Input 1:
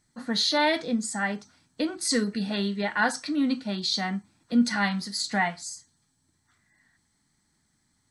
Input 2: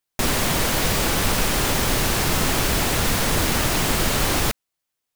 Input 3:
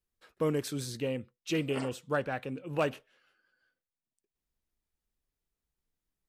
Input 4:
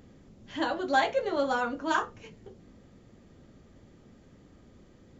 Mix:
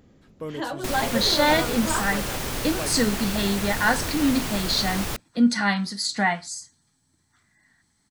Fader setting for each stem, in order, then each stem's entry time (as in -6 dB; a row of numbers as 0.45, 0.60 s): +3.0, -8.5, -4.5, -1.0 dB; 0.85, 0.65, 0.00, 0.00 s